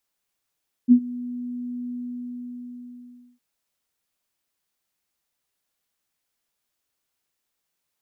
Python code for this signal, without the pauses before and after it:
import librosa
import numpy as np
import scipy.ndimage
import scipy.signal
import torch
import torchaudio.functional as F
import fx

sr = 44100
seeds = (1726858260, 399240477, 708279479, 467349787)

y = fx.adsr_tone(sr, wave='sine', hz=245.0, attack_ms=38.0, decay_ms=75.0, sustain_db=-21.0, held_s=1.02, release_ms=1490.0, level_db=-7.5)